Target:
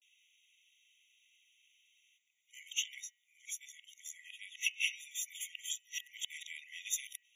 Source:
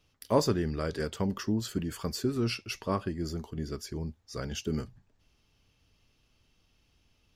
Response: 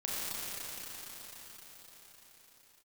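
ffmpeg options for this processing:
-af "areverse,bandreject=f=214.6:t=h:w=4,bandreject=f=429.2:t=h:w=4,bandreject=f=643.8:t=h:w=4,bandreject=f=858.4:t=h:w=4,bandreject=f=1.073k:t=h:w=4,bandreject=f=1.2876k:t=h:w=4,bandreject=f=1.5022k:t=h:w=4,bandreject=f=1.7168k:t=h:w=4,bandreject=f=1.9314k:t=h:w=4,bandreject=f=2.146k:t=h:w=4,bandreject=f=2.3606k:t=h:w=4,bandreject=f=2.5752k:t=h:w=4,bandreject=f=2.7898k:t=h:w=4,bandreject=f=3.0044k:t=h:w=4,afftfilt=real='re*eq(mod(floor(b*sr/1024/1900),2),1)':imag='im*eq(mod(floor(b*sr/1024/1900),2),1)':win_size=1024:overlap=0.75,volume=5.5dB"

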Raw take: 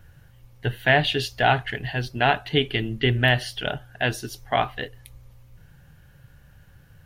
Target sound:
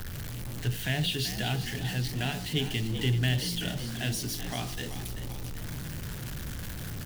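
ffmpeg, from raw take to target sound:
-filter_complex "[0:a]aeval=exprs='val(0)+0.5*0.0473*sgn(val(0))':c=same,acrossover=split=290|3000[a][b][c];[b]acompressor=threshold=-45dB:ratio=2[d];[a][d][c]amix=inputs=3:normalize=0,bandreject=f=47.09:t=h:w=4,bandreject=f=94.18:t=h:w=4,bandreject=f=141.27:t=h:w=4,bandreject=f=188.36:t=h:w=4,bandreject=f=235.45:t=h:w=4,bandreject=f=282.54:t=h:w=4,bandreject=f=329.63:t=h:w=4,bandreject=f=376.72:t=h:w=4,bandreject=f=423.81:t=h:w=4,bandreject=f=470.9:t=h:w=4,bandreject=f=517.99:t=h:w=4,bandreject=f=565.08:t=h:w=4,bandreject=f=612.17:t=h:w=4,bandreject=f=659.26:t=h:w=4,bandreject=f=706.35:t=h:w=4,bandreject=f=753.44:t=h:w=4,bandreject=f=800.53:t=h:w=4,bandreject=f=847.62:t=h:w=4,bandreject=f=894.71:t=h:w=4,bandreject=f=941.8:t=h:w=4,bandreject=f=988.89:t=h:w=4,bandreject=f=1.03598k:t=h:w=4,bandreject=f=1.08307k:t=h:w=4,bandreject=f=1.13016k:t=h:w=4,bandreject=f=1.17725k:t=h:w=4,bandreject=f=1.22434k:t=h:w=4,bandreject=f=1.27143k:t=h:w=4,bandreject=f=1.31852k:t=h:w=4,asplit=2[e][f];[f]asplit=6[g][h][i][j][k][l];[g]adelay=385,afreqshift=54,volume=-11dB[m];[h]adelay=770,afreqshift=108,volume=-16.5dB[n];[i]adelay=1155,afreqshift=162,volume=-22dB[o];[j]adelay=1540,afreqshift=216,volume=-27.5dB[p];[k]adelay=1925,afreqshift=270,volume=-33.1dB[q];[l]adelay=2310,afreqshift=324,volume=-38.6dB[r];[m][n][o][p][q][r]amix=inputs=6:normalize=0[s];[e][s]amix=inputs=2:normalize=0,volume=-4.5dB"

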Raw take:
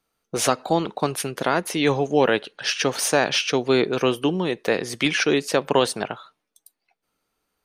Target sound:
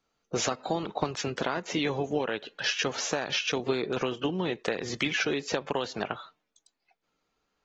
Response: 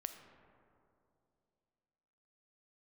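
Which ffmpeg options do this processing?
-af "highshelf=f=8.6k:g=2,acompressor=threshold=-23dB:ratio=16,volume=-2dB" -ar 48000 -c:a aac -b:a 24k

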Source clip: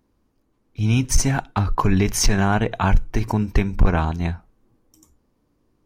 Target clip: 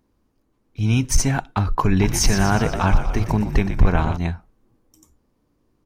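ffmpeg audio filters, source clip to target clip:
-filter_complex "[0:a]asplit=3[a][b][c];[a]afade=t=out:st=1.99:d=0.02[d];[b]asplit=9[e][f][g][h][i][j][k][l][m];[f]adelay=120,afreqshift=-62,volume=-9dB[n];[g]adelay=240,afreqshift=-124,volume=-13.3dB[o];[h]adelay=360,afreqshift=-186,volume=-17.6dB[p];[i]adelay=480,afreqshift=-248,volume=-21.9dB[q];[j]adelay=600,afreqshift=-310,volume=-26.2dB[r];[k]adelay=720,afreqshift=-372,volume=-30.5dB[s];[l]adelay=840,afreqshift=-434,volume=-34.8dB[t];[m]adelay=960,afreqshift=-496,volume=-39.1dB[u];[e][n][o][p][q][r][s][t][u]amix=inputs=9:normalize=0,afade=t=in:st=1.99:d=0.02,afade=t=out:st=4.16:d=0.02[v];[c]afade=t=in:st=4.16:d=0.02[w];[d][v][w]amix=inputs=3:normalize=0"

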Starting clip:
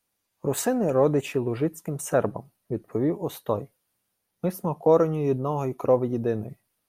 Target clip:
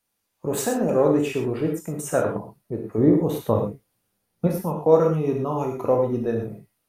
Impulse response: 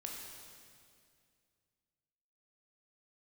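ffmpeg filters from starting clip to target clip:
-filter_complex "[0:a]asettb=1/sr,asplit=3[a][b][c];[a]atrim=end=2.984[d];[b]atrim=start=2.98:end=4.47,asetpts=PTS-STARTPTS,afade=t=in:d=0.004:c=qsin,afade=t=out:st=1.486:d=0.004:c=qsin,lowshelf=f=460:g=8.5[e];[c]atrim=start=4.466[f];[d][e]acrossfade=d=0.004:c1=hsin:c2=qsin[g];[g][f]acrossfade=d=0.004:c1=qsin:c2=hsin[h];[1:a]atrim=start_sample=2205,afade=t=out:st=0.18:d=0.01,atrim=end_sample=8379[i];[h][i]afir=irnorm=-1:irlink=0,volume=4.5dB"

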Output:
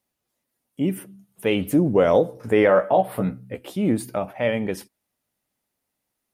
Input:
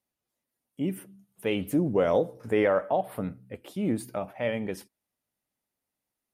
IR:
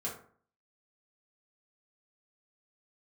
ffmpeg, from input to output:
-filter_complex "[0:a]asettb=1/sr,asplit=3[a][b][c];[a]atrim=end=2.674[d];[b]atrim=start=2.67:end=3.76,asetpts=PTS-STARTPTS,afade=t=in:d=0.004:c=qsin,afade=t=out:st=1.086:d=0.004:c=qsin,asplit=2[e][f];[f]adelay=16,volume=-5.5dB[g];[e][g]amix=inputs=2:normalize=0,atrim=end_sample=48069[h];[c]atrim=start=3.756[i];[d][h]acrossfade=d=0.004:c1=hsin:c2=qsin[j];[j][i]acrossfade=d=0.004:c1=qsin:c2=hsin,volume=6.5dB"

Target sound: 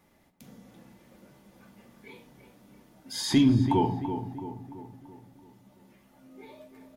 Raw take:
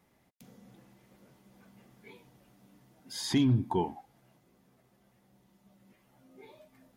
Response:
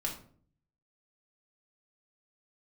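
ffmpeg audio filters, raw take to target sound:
-filter_complex "[0:a]asplit=2[a][b];[b]adelay=335,lowpass=f=1.9k:p=1,volume=-9dB,asplit=2[c][d];[d]adelay=335,lowpass=f=1.9k:p=1,volume=0.52,asplit=2[e][f];[f]adelay=335,lowpass=f=1.9k:p=1,volume=0.52,asplit=2[g][h];[h]adelay=335,lowpass=f=1.9k:p=1,volume=0.52,asplit=2[i][j];[j]adelay=335,lowpass=f=1.9k:p=1,volume=0.52,asplit=2[k][l];[l]adelay=335,lowpass=f=1.9k:p=1,volume=0.52[m];[a][c][e][g][i][k][m]amix=inputs=7:normalize=0,asplit=2[n][o];[1:a]atrim=start_sample=2205[p];[o][p]afir=irnorm=-1:irlink=0,volume=-3.5dB[q];[n][q]amix=inputs=2:normalize=0"

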